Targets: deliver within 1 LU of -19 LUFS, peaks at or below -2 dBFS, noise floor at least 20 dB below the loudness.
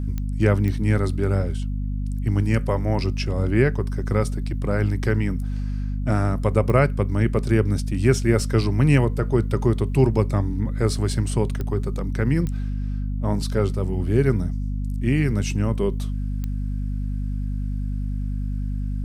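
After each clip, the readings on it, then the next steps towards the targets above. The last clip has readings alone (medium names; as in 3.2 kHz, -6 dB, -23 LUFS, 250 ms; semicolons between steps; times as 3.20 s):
clicks found 6; hum 50 Hz; highest harmonic 250 Hz; hum level -23 dBFS; loudness -23.0 LUFS; peak level -3.5 dBFS; loudness target -19.0 LUFS
-> de-click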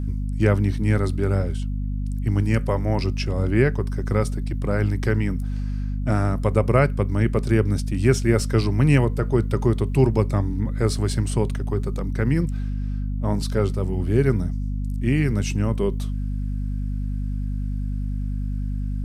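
clicks found 0; hum 50 Hz; highest harmonic 250 Hz; hum level -23 dBFS
-> de-hum 50 Hz, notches 5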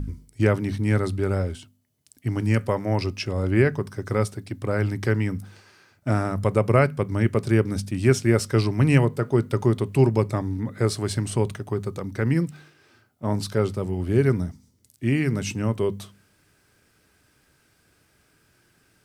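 hum not found; loudness -24.0 LUFS; peak level -4.0 dBFS; loudness target -19.0 LUFS
-> trim +5 dB; peak limiter -2 dBFS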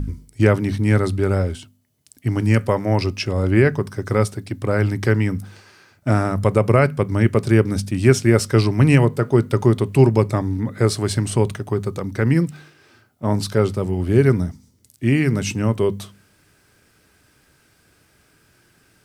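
loudness -19.0 LUFS; peak level -2.0 dBFS; noise floor -59 dBFS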